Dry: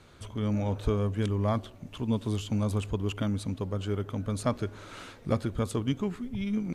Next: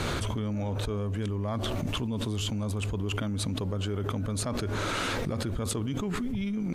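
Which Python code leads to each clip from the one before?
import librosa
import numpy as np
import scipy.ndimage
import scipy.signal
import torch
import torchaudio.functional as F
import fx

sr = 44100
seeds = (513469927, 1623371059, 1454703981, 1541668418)

y = fx.env_flatten(x, sr, amount_pct=100)
y = y * librosa.db_to_amplitude(-8.0)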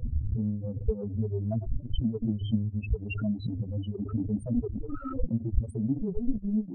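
y = fx.chorus_voices(x, sr, voices=6, hz=0.91, base_ms=16, depth_ms=2.4, mix_pct=55)
y = fx.spec_topn(y, sr, count=4)
y = fx.transient(y, sr, attack_db=6, sustain_db=-10)
y = y * librosa.db_to_amplitude(5.5)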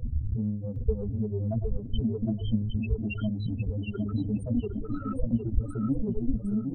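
y = fx.echo_feedback(x, sr, ms=760, feedback_pct=22, wet_db=-5.5)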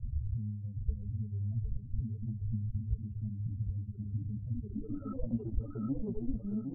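y = fx.filter_sweep_lowpass(x, sr, from_hz=130.0, to_hz=980.0, start_s=4.56, end_s=5.12, q=1.4)
y = y * librosa.db_to_amplitude(-7.5)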